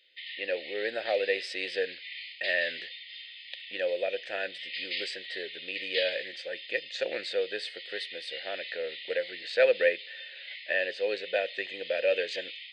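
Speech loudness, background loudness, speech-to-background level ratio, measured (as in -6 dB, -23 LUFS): -32.0 LUFS, -39.5 LUFS, 7.5 dB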